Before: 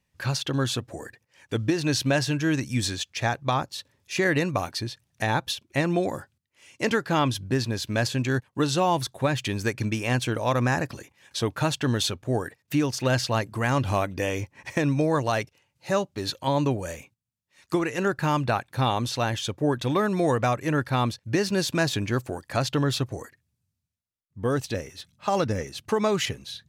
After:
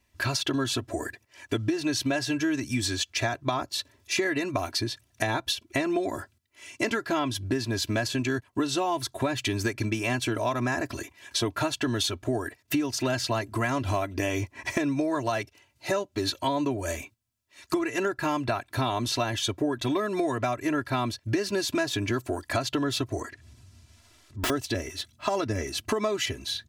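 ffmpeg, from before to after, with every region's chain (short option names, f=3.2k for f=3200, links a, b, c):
-filter_complex "[0:a]asettb=1/sr,asplit=3[a][b][c];[a]atrim=end=23.204[d];[b]atrim=start=23.2:end=24.5,asetpts=PTS-STARTPTS,afade=t=in:d=0.004:c=qsin,afade=t=out:st=1.296:d=0.004:c=qsin,lowpass=7.3k,acompressor=mode=upward:threshold=-38dB:ratio=2.5:attack=3.2:release=140:knee=2.83:detection=peak,aeval=exprs='(mod(20*val(0)+1,2)-1)/20':c=same[e];[c]atrim=start=24.496[f];[d][e]acrossfade=d=0.004:c1=hsin:c2=qsin[g];[g][f]acrossfade=d=0.004:c1=qsin:c2=hsin,aecho=1:1:3:0.85,acompressor=threshold=-29dB:ratio=6,volume=4.5dB"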